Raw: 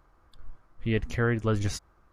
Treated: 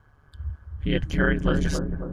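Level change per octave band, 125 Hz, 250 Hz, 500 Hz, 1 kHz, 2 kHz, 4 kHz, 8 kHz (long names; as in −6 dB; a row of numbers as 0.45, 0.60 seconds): +2.0, +5.5, +2.5, +2.5, +6.0, +5.5, +0.5 decibels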